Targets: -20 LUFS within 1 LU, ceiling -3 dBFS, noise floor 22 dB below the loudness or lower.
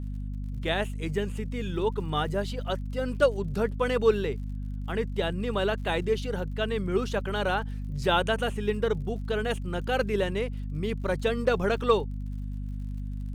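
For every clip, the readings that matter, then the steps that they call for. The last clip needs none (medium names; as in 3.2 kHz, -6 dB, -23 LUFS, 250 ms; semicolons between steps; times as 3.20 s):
tick rate 53 per s; hum 50 Hz; highest harmonic 250 Hz; hum level -31 dBFS; loudness -29.0 LUFS; peak level -9.0 dBFS; loudness target -20.0 LUFS
-> de-click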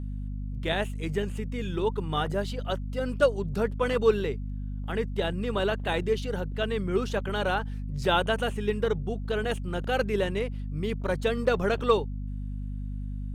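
tick rate 0.97 per s; hum 50 Hz; highest harmonic 250 Hz; hum level -31 dBFS
-> hum notches 50/100/150/200/250 Hz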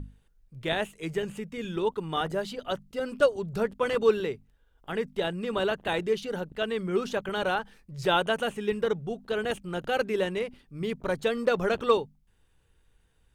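hum not found; loudness -29.5 LUFS; peak level -9.5 dBFS; loudness target -20.0 LUFS
-> trim +9.5 dB; peak limiter -3 dBFS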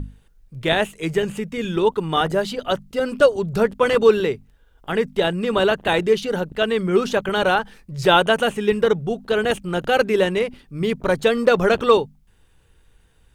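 loudness -20.0 LUFS; peak level -3.0 dBFS; noise floor -56 dBFS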